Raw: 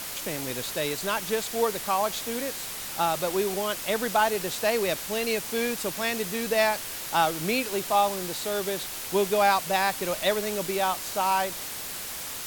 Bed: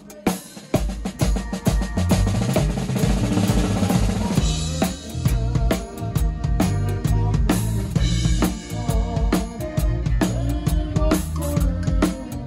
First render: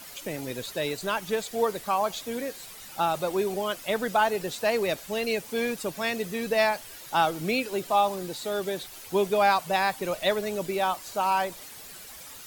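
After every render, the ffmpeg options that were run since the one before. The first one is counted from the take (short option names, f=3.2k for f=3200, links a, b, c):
-af "afftdn=nr=11:nf=-36"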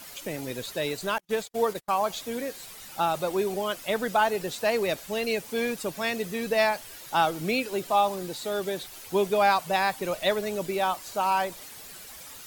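-filter_complex "[0:a]asettb=1/sr,asplit=3[a][b][c];[a]atrim=end=1.184[d];[b]atrim=start=1.18:end=1.93,asetpts=PTS-STARTPTS,afade=t=in:d=0.004:c=qsin,afade=t=out:st=0.746:d=0.004:c=qsin,agate=range=-42dB:threshold=-36dB:ratio=16:release=100:detection=peak[e];[c]atrim=start=1.926[f];[d][e]acrossfade=d=0.004:c1=hsin:c2=qsin[g];[g][f]acrossfade=d=0.004:c1=qsin:c2=hsin"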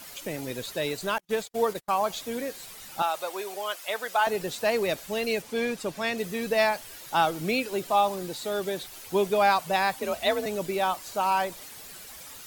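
-filter_complex "[0:a]asettb=1/sr,asplit=3[a][b][c];[a]atrim=end=3.024[d];[b]atrim=start=3.02:end=4.27,asetpts=PTS-STARTPTS,afade=t=in:d=0.004:c=qsin,afade=t=out:st=1.246:d=0.004:c=qsin,highpass=650[e];[c]atrim=start=4.266[f];[d][e]acrossfade=d=0.004:c1=hsin:c2=qsin[g];[g][f]acrossfade=d=0.004:c1=qsin:c2=hsin,asettb=1/sr,asplit=3[h][i][j];[h]atrim=end=5.424[k];[i]atrim=start=5.42:end=6.18,asetpts=PTS-STARTPTS,afade=t=in:d=0.004:c=qsin,afade=t=out:st=0.756:d=0.004:c=qsin,highshelf=f=11k:g=-11[l];[j]atrim=start=6.176[m];[k][l]acrossfade=d=0.004:c1=hsin:c2=qsin[n];[n][m]acrossfade=d=0.004:c1=qsin:c2=hsin,asettb=1/sr,asplit=3[o][p][q];[o]atrim=end=9.994[r];[p]atrim=start=9.99:end=10.46,asetpts=PTS-STARTPTS,afade=t=in:d=0.004:c=qsin,afade=t=out:st=0.466:d=0.004:c=qsin,afreqshift=45[s];[q]atrim=start=10.456[t];[r][s]acrossfade=d=0.004:c1=hsin:c2=qsin[u];[u][t]acrossfade=d=0.004:c1=qsin:c2=hsin"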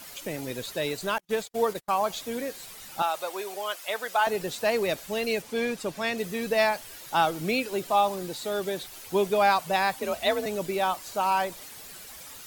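-af anull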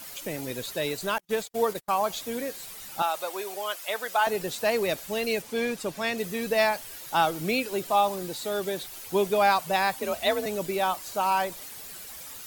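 -af "highshelf=f=10k:g=5"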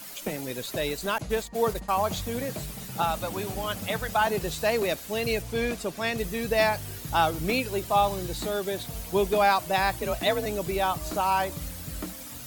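-filter_complex "[1:a]volume=-17.5dB[a];[0:a][a]amix=inputs=2:normalize=0"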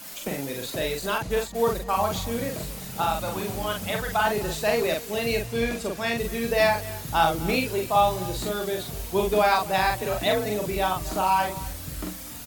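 -filter_complex "[0:a]asplit=2[a][b];[b]adelay=43,volume=-3dB[c];[a][c]amix=inputs=2:normalize=0,aecho=1:1:254:0.119"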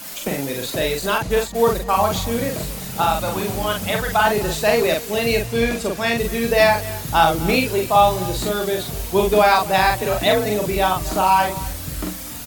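-af "volume=6.5dB,alimiter=limit=-3dB:level=0:latency=1"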